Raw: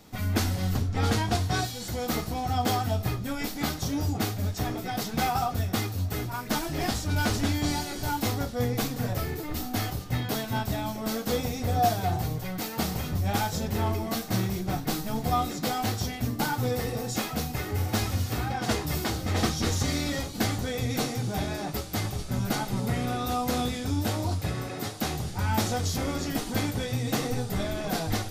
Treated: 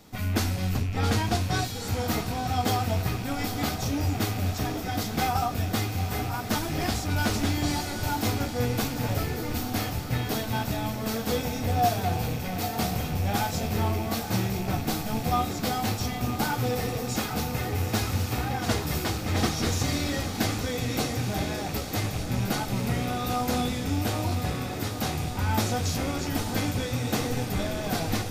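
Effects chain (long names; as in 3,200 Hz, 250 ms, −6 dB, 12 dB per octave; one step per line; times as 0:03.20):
loose part that buzzes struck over −33 dBFS, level −33 dBFS
feedback delay with all-pass diffusion 889 ms, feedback 66%, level −9 dB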